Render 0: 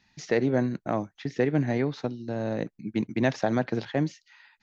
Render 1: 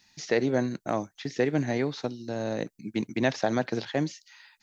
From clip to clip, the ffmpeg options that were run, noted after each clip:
ffmpeg -i in.wav -filter_complex "[0:a]acrossover=split=4600[link_01][link_02];[link_02]acompressor=threshold=-57dB:ratio=4:attack=1:release=60[link_03];[link_01][link_03]amix=inputs=2:normalize=0,bass=frequency=250:gain=-4,treble=frequency=4000:gain=13" out.wav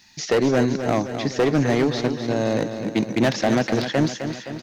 ffmpeg -i in.wav -filter_complex "[0:a]asoftclip=type=hard:threshold=-23dB,asplit=2[link_01][link_02];[link_02]aecho=0:1:259|518|777|1036|1295|1554|1813:0.355|0.209|0.124|0.0729|0.043|0.0254|0.015[link_03];[link_01][link_03]amix=inputs=2:normalize=0,volume=9dB" out.wav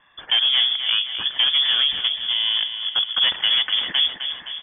ffmpeg -i in.wav -af "lowpass=frequency=3100:width_type=q:width=0.5098,lowpass=frequency=3100:width_type=q:width=0.6013,lowpass=frequency=3100:width_type=q:width=0.9,lowpass=frequency=3100:width_type=q:width=2.563,afreqshift=-3600" out.wav

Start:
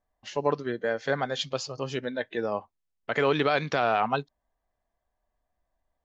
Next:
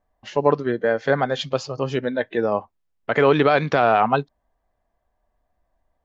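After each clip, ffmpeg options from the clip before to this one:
ffmpeg -i in.wav -af "highshelf=frequency=3000:gain=-11,volume=8.5dB" out.wav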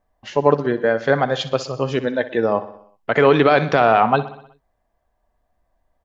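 ffmpeg -i in.wav -af "aecho=1:1:62|124|186|248|310|372:0.178|0.103|0.0598|0.0347|0.0201|0.0117,volume=2.5dB" out.wav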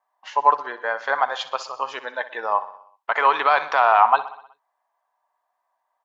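ffmpeg -i in.wav -af "highpass=frequency=960:width_type=q:width=3.8,volume=-4.5dB" out.wav

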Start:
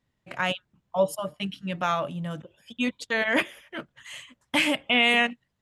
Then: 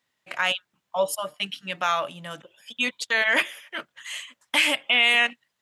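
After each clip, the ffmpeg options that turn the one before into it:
ffmpeg -i in.wav -filter_complex "[0:a]highpass=frequency=1400:poles=1,asplit=2[link_01][link_02];[link_02]alimiter=limit=-20.5dB:level=0:latency=1:release=36,volume=3dB[link_03];[link_01][link_03]amix=inputs=2:normalize=0" out.wav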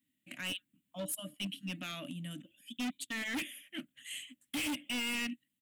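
ffmpeg -i in.wav -af "firequalizer=gain_entry='entry(130,0);entry(290,13);entry(410,-24);entry(590,-13);entry(870,-27);entry(1900,-10);entry(2900,-4);entry(5200,-17);entry(8100,0);entry(14000,4)':delay=0.05:min_phase=1,asoftclip=type=hard:threshold=-30.5dB,volume=-3dB" out.wav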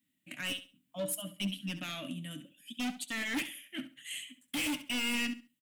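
ffmpeg -i in.wav -af "flanger=delay=5:depth=3.3:regen=68:speed=0.68:shape=triangular,aecho=1:1:68|136|204:0.224|0.0493|0.0108,volume=6.5dB" out.wav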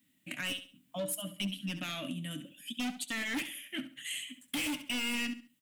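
ffmpeg -i in.wav -af "acompressor=threshold=-48dB:ratio=2,volume=8dB" out.wav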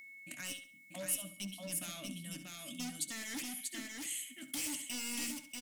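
ffmpeg -i in.wav -af "aeval=exprs='val(0)+0.01*sin(2*PI*2200*n/s)':channel_layout=same,highshelf=frequency=4000:width_type=q:width=1.5:gain=9.5,aecho=1:1:638:0.668,volume=-8.5dB" out.wav

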